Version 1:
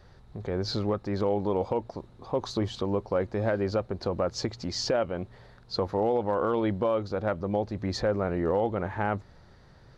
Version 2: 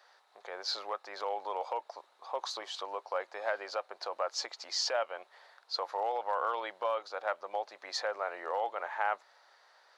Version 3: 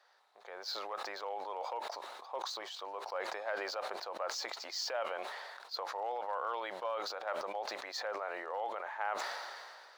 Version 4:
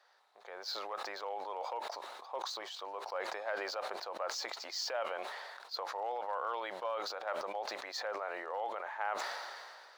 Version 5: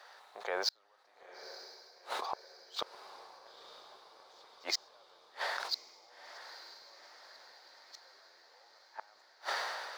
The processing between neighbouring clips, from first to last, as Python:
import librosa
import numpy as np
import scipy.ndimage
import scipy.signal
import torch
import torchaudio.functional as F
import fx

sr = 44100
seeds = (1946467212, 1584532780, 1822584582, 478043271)

y1 = scipy.signal.sosfilt(scipy.signal.butter(4, 680.0, 'highpass', fs=sr, output='sos'), x)
y2 = scipy.signal.medfilt(y1, 3)
y2 = fx.sustainer(y2, sr, db_per_s=28.0)
y2 = y2 * 10.0 ** (-5.5 / 20.0)
y3 = y2
y4 = fx.gate_flip(y3, sr, shuts_db=-32.0, range_db=-41)
y4 = fx.echo_diffused(y4, sr, ms=932, feedback_pct=59, wet_db=-13.0)
y4 = y4 * 10.0 ** (12.0 / 20.0)